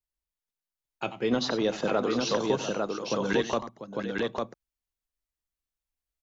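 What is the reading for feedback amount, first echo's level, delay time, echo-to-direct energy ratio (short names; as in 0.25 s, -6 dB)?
no steady repeat, -11.0 dB, 91 ms, -2.0 dB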